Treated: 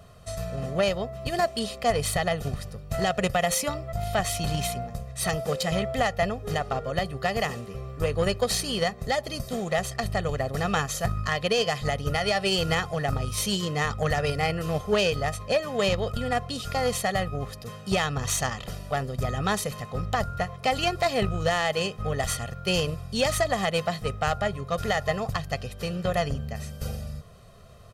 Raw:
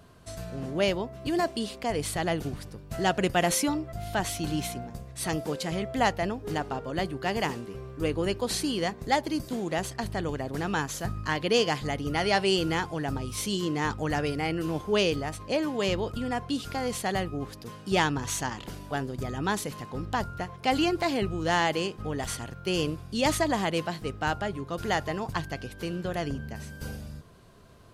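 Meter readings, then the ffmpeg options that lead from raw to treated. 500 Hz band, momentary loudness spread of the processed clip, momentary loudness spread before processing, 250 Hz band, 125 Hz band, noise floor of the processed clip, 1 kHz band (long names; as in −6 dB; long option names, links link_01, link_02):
+3.0 dB, 8 LU, 10 LU, −2.0 dB, +4.0 dB, −43 dBFS, +1.5 dB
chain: -af "aecho=1:1:1.6:0.81,alimiter=limit=-18dB:level=0:latency=1:release=172,aeval=exprs='0.126*(cos(1*acos(clip(val(0)/0.126,-1,1)))-cos(1*PI/2))+0.0141*(cos(3*acos(clip(val(0)/0.126,-1,1)))-cos(3*PI/2))':channel_layout=same,volume=5dB"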